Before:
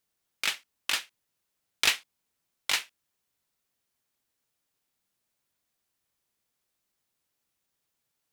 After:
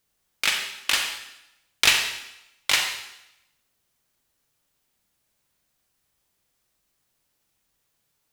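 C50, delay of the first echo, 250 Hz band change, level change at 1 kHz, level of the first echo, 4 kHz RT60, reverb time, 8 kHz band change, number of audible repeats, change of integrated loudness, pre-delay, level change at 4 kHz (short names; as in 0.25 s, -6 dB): 4.5 dB, none, +7.5 dB, +7.0 dB, none, 0.85 s, 0.85 s, +7.5 dB, none, +6.5 dB, 35 ms, +7.0 dB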